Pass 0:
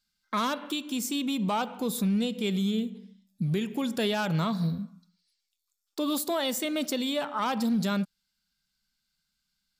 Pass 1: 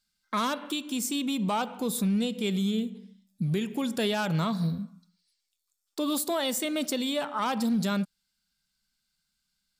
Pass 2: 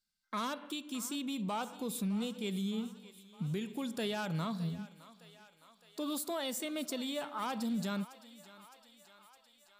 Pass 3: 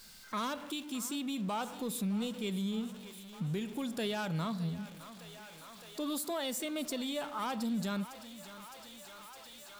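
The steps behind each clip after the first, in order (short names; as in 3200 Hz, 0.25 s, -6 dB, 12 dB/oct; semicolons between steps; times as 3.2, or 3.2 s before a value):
bell 8900 Hz +4.5 dB 0.45 oct
thinning echo 0.612 s, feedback 70%, high-pass 460 Hz, level -16.5 dB; gain -8.5 dB
zero-crossing step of -47.5 dBFS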